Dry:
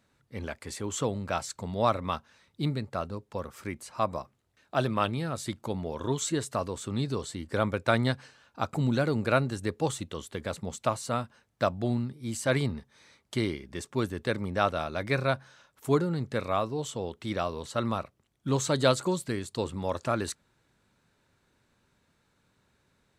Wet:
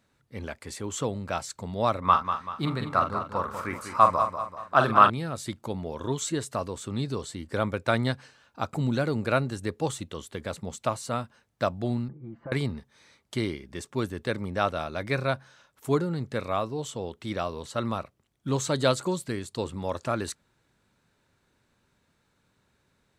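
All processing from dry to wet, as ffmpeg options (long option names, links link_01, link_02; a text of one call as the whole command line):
ffmpeg -i in.wav -filter_complex "[0:a]asettb=1/sr,asplit=3[link_01][link_02][link_03];[link_01]atrim=end=2.024[link_04];[link_02]atrim=start=2.02:end=5.1,asetpts=PTS-STARTPTS,afade=type=in:duration=0.004:curve=qsin,afade=type=out:start_time=3.076:duration=0.004:curve=qsin,equalizer=frequency=1200:width=1.2:gain=14,asplit=2[link_05][link_06];[link_06]adelay=44,volume=-8dB[link_07];[link_05][link_07]amix=inputs=2:normalize=0,atrim=end_sample=135828,aecho=1:1:193|386|579|772|965:0.376|0.165|0.0728|0.032|0.0141,atrim=end_sample=135828[link_08];[link_03]atrim=start=5.096[link_09];[link_04][link_08]acrossfade=duration=0.004:curve1=hsin:curve2=qsin[link_10];[link_10][link_09]acrossfade=duration=0.004:curve1=qsin:curve2=hsin,asettb=1/sr,asplit=3[link_11][link_12][link_13];[link_11]atrim=end=12.084[link_14];[link_12]atrim=start=12.08:end=12.52,asetpts=PTS-STARTPTS,afade=type=in:duration=0.004:curve=qsin,afade=type=out:start_time=0.436:duration=0.004:curve=qsin,lowpass=frequency=1400:width=0.5412,lowpass=frequency=1400:width=1.3066,aecho=1:1:5.9:0.71,atrim=end_sample=19404,acompressor=threshold=-37dB:ratio=4:attack=3.2:release=140:knee=1:detection=peak[link_15];[link_13]atrim=start=12.516[link_16];[link_14][link_15]acrossfade=duration=0.004:curve1=hsin:curve2=qsin[link_17];[link_17][link_16]acrossfade=duration=0.004:curve1=qsin:curve2=hsin" out.wav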